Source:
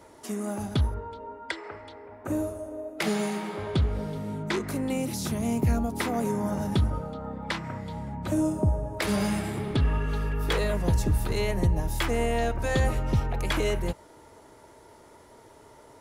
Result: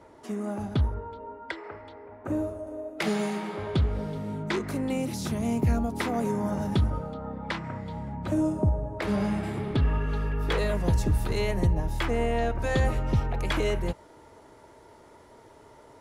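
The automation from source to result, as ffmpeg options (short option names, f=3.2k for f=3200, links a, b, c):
-af "asetnsamples=n=441:p=0,asendcmd='2.67 lowpass f 5700;7.14 lowpass f 3300;8.69 lowpass f 1500;9.43 lowpass f 3300;10.58 lowpass f 7500;11.73 lowpass f 2900;12.55 lowpass f 5100',lowpass=f=2.2k:p=1"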